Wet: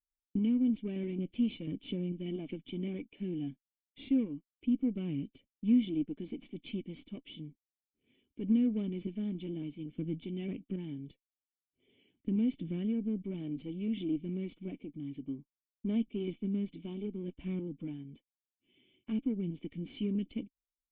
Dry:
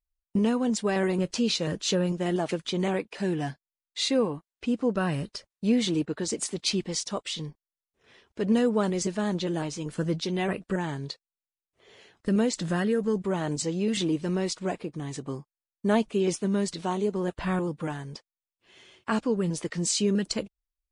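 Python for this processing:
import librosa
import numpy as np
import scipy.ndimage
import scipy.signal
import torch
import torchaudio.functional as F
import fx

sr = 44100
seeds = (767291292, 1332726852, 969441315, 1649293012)

y = fx.cheby_harmonics(x, sr, harmonics=(8,), levels_db=(-22,), full_scale_db=-12.0)
y = fx.formant_cascade(y, sr, vowel='i')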